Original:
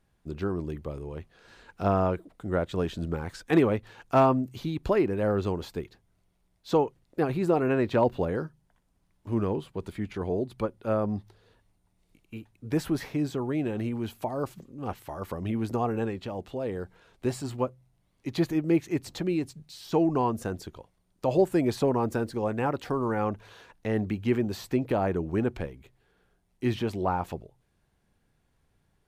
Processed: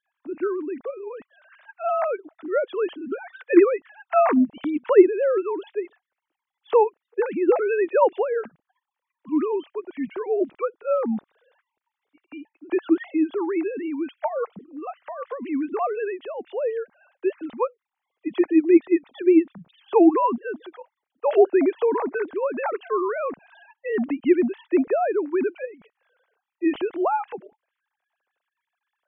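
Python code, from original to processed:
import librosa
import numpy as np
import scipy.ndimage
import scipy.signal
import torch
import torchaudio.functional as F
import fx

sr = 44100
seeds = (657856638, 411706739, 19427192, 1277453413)

y = fx.sine_speech(x, sr)
y = F.gain(torch.from_numpy(y), 5.5).numpy()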